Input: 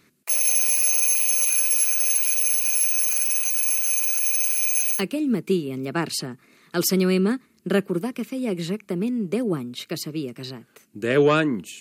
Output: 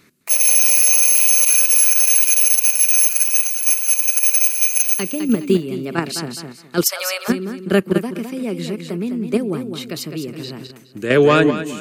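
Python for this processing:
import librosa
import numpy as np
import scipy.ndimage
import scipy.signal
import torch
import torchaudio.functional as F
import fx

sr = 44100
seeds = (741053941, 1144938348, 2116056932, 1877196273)

p1 = fx.echo_feedback(x, sr, ms=208, feedback_pct=29, wet_db=-8.0)
p2 = fx.level_steps(p1, sr, step_db=21)
p3 = p1 + (p2 * 10.0 ** (2.5 / 20.0))
y = fx.steep_highpass(p3, sr, hz=530.0, slope=72, at=(6.83, 7.28), fade=0.02)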